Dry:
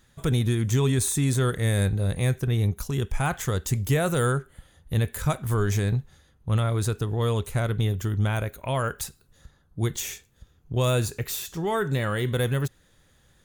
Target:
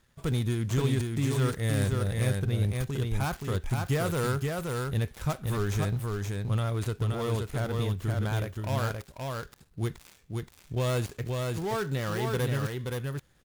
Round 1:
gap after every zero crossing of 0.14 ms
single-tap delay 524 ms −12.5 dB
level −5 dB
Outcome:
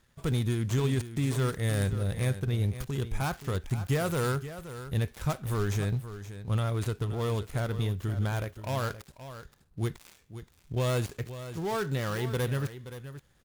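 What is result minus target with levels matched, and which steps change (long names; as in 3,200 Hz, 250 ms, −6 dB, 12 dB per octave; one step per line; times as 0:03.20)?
echo-to-direct −9 dB
change: single-tap delay 524 ms −3.5 dB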